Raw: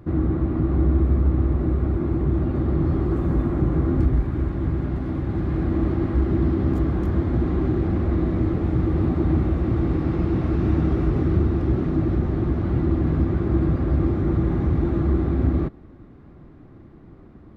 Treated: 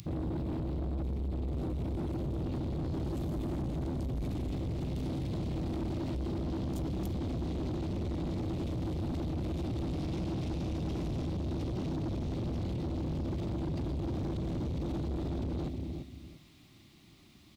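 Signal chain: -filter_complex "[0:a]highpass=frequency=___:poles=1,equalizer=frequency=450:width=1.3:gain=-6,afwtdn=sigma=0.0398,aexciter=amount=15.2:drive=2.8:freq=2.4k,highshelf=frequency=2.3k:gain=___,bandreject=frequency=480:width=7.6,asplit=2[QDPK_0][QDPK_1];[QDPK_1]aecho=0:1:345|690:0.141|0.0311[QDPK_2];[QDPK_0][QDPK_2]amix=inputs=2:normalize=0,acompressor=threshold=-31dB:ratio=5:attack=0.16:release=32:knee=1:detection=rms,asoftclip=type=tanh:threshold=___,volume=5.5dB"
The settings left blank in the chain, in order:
89, 6, -37dB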